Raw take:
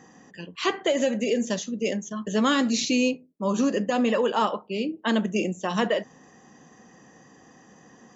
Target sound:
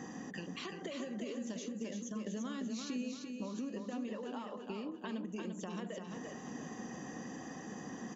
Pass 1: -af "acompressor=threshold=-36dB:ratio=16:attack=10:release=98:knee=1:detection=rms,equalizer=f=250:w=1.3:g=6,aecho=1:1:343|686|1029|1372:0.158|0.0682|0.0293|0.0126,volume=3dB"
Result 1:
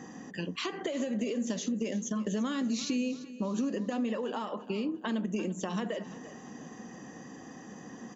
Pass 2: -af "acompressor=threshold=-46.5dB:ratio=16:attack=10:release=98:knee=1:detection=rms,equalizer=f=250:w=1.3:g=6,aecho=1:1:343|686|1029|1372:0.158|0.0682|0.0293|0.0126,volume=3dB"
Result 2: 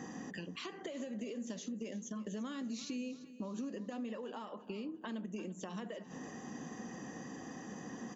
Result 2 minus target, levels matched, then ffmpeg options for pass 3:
echo-to-direct -11 dB
-af "acompressor=threshold=-46.5dB:ratio=16:attack=10:release=98:knee=1:detection=rms,equalizer=f=250:w=1.3:g=6,aecho=1:1:343|686|1029|1372|1715:0.562|0.242|0.104|0.0447|0.0192,volume=3dB"

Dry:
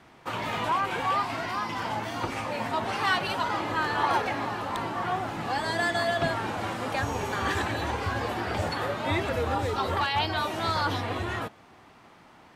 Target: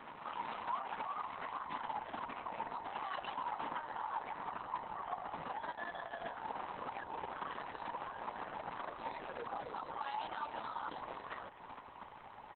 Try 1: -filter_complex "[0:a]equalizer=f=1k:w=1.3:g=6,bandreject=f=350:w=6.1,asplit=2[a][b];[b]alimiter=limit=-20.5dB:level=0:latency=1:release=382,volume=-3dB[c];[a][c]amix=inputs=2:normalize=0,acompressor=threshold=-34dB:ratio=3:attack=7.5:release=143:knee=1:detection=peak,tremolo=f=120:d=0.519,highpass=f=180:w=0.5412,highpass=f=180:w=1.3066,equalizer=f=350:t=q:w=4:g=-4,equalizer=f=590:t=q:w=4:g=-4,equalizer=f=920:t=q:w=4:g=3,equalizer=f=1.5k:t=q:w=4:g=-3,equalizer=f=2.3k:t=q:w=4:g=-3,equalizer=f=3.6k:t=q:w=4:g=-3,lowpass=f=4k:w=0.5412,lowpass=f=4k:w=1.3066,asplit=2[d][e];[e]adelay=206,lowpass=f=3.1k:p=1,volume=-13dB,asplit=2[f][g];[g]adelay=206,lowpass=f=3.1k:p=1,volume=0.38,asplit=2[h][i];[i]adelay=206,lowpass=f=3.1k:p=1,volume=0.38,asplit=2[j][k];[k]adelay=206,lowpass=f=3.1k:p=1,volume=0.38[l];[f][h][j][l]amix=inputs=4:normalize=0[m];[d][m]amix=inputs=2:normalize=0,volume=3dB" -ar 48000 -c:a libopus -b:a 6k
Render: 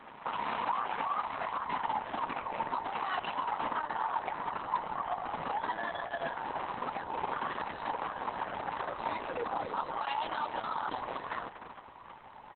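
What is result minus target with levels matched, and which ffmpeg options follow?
compressor: peak gain reduction -7.5 dB
-filter_complex "[0:a]equalizer=f=1k:w=1.3:g=6,bandreject=f=350:w=6.1,asplit=2[a][b];[b]alimiter=limit=-20.5dB:level=0:latency=1:release=382,volume=-3dB[c];[a][c]amix=inputs=2:normalize=0,acompressor=threshold=-45dB:ratio=3:attack=7.5:release=143:knee=1:detection=peak,tremolo=f=120:d=0.519,highpass=f=180:w=0.5412,highpass=f=180:w=1.3066,equalizer=f=350:t=q:w=4:g=-4,equalizer=f=590:t=q:w=4:g=-4,equalizer=f=920:t=q:w=4:g=3,equalizer=f=1.5k:t=q:w=4:g=-3,equalizer=f=2.3k:t=q:w=4:g=-3,equalizer=f=3.6k:t=q:w=4:g=-3,lowpass=f=4k:w=0.5412,lowpass=f=4k:w=1.3066,asplit=2[d][e];[e]adelay=206,lowpass=f=3.1k:p=1,volume=-13dB,asplit=2[f][g];[g]adelay=206,lowpass=f=3.1k:p=1,volume=0.38,asplit=2[h][i];[i]adelay=206,lowpass=f=3.1k:p=1,volume=0.38,asplit=2[j][k];[k]adelay=206,lowpass=f=3.1k:p=1,volume=0.38[l];[f][h][j][l]amix=inputs=4:normalize=0[m];[d][m]amix=inputs=2:normalize=0,volume=3dB" -ar 48000 -c:a libopus -b:a 6k

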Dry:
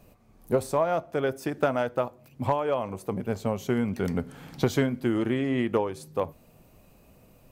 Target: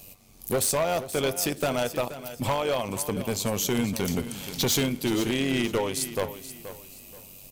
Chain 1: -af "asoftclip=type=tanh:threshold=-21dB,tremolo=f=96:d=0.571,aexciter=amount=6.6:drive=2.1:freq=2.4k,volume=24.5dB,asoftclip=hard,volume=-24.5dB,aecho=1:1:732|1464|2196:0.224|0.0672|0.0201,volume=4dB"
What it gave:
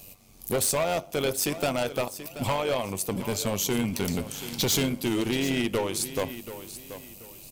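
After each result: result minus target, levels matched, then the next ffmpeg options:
echo 0.255 s late; soft clip: distortion +11 dB
-af "asoftclip=type=tanh:threshold=-21dB,tremolo=f=96:d=0.571,aexciter=amount=6.6:drive=2.1:freq=2.4k,volume=24.5dB,asoftclip=hard,volume=-24.5dB,aecho=1:1:477|954|1431:0.224|0.0672|0.0201,volume=4dB"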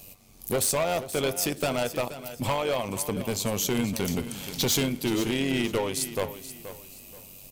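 soft clip: distortion +11 dB
-af "asoftclip=type=tanh:threshold=-13dB,tremolo=f=96:d=0.571,aexciter=amount=6.6:drive=2.1:freq=2.4k,volume=24.5dB,asoftclip=hard,volume=-24.5dB,aecho=1:1:477|954|1431:0.224|0.0672|0.0201,volume=4dB"

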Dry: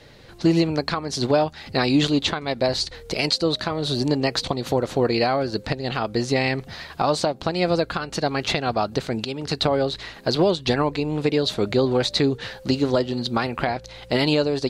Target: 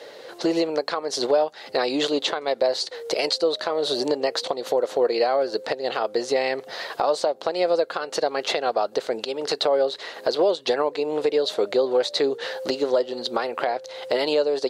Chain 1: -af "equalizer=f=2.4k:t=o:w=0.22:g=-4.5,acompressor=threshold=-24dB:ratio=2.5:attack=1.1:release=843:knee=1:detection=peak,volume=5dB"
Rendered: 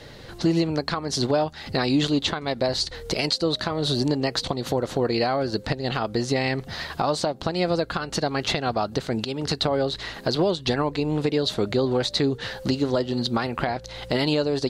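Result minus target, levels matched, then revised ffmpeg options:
500 Hz band -3.5 dB
-af "highpass=f=490:t=q:w=2.4,equalizer=f=2.4k:t=o:w=0.22:g=-4.5,acompressor=threshold=-24dB:ratio=2.5:attack=1.1:release=843:knee=1:detection=peak,volume=5dB"

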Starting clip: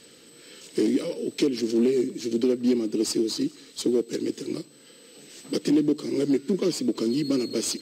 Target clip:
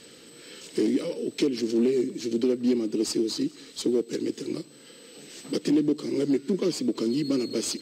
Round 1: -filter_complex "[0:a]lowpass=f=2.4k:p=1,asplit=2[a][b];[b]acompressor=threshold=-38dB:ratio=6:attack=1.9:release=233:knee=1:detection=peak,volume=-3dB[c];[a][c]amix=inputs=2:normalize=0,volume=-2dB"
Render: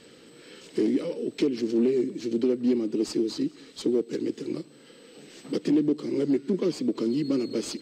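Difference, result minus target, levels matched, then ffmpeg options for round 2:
8000 Hz band -7.0 dB
-filter_complex "[0:a]lowpass=f=9.4k:p=1,asplit=2[a][b];[b]acompressor=threshold=-38dB:ratio=6:attack=1.9:release=233:knee=1:detection=peak,volume=-3dB[c];[a][c]amix=inputs=2:normalize=0,volume=-2dB"

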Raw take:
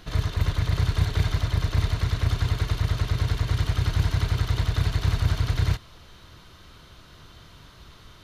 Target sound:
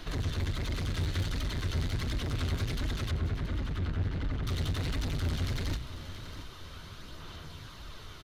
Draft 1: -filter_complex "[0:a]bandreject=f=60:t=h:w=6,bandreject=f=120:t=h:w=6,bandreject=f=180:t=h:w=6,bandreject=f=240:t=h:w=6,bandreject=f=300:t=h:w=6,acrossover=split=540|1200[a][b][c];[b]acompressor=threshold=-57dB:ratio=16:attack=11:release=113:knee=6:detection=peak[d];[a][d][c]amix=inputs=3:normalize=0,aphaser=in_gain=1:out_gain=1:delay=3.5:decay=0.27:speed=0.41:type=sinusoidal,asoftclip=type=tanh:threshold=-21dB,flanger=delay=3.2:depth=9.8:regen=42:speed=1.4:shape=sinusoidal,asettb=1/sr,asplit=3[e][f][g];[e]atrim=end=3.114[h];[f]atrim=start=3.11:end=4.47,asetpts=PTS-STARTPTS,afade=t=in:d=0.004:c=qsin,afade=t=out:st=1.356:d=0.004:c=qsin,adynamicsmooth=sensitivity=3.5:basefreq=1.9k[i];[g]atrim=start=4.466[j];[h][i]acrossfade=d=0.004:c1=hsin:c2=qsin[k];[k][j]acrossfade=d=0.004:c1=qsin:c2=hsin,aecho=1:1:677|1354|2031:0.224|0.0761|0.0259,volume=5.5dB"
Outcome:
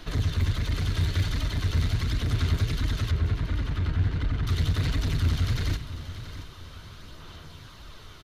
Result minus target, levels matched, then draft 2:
soft clip: distortion -6 dB
-filter_complex "[0:a]bandreject=f=60:t=h:w=6,bandreject=f=120:t=h:w=6,bandreject=f=180:t=h:w=6,bandreject=f=240:t=h:w=6,bandreject=f=300:t=h:w=6,acrossover=split=540|1200[a][b][c];[b]acompressor=threshold=-57dB:ratio=16:attack=11:release=113:knee=6:detection=peak[d];[a][d][c]amix=inputs=3:normalize=0,aphaser=in_gain=1:out_gain=1:delay=3.5:decay=0.27:speed=0.41:type=sinusoidal,asoftclip=type=tanh:threshold=-30.5dB,flanger=delay=3.2:depth=9.8:regen=42:speed=1.4:shape=sinusoidal,asettb=1/sr,asplit=3[e][f][g];[e]atrim=end=3.114[h];[f]atrim=start=3.11:end=4.47,asetpts=PTS-STARTPTS,afade=t=in:d=0.004:c=qsin,afade=t=out:st=1.356:d=0.004:c=qsin,adynamicsmooth=sensitivity=3.5:basefreq=1.9k[i];[g]atrim=start=4.466[j];[h][i]acrossfade=d=0.004:c1=hsin:c2=qsin[k];[k][j]acrossfade=d=0.004:c1=qsin:c2=hsin,aecho=1:1:677|1354|2031:0.224|0.0761|0.0259,volume=5.5dB"

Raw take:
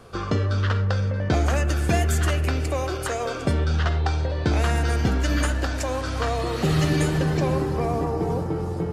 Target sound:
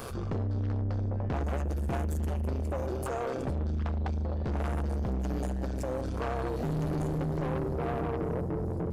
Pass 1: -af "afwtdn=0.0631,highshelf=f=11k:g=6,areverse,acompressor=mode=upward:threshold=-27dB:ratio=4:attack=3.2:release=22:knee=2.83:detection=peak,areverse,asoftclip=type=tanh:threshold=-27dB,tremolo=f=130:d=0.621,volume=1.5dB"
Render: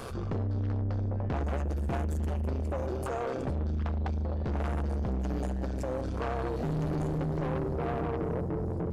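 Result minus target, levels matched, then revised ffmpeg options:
8000 Hz band -3.5 dB
-af "afwtdn=0.0631,highshelf=f=11k:g=17.5,areverse,acompressor=mode=upward:threshold=-27dB:ratio=4:attack=3.2:release=22:knee=2.83:detection=peak,areverse,asoftclip=type=tanh:threshold=-27dB,tremolo=f=130:d=0.621,volume=1.5dB"

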